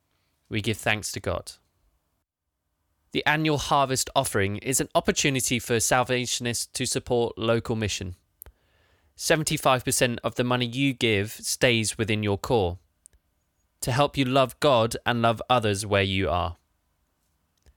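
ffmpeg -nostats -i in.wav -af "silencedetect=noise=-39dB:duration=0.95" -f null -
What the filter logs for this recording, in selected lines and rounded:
silence_start: 1.53
silence_end: 3.14 | silence_duration: 1.61
silence_start: 16.53
silence_end: 17.77 | silence_duration: 1.24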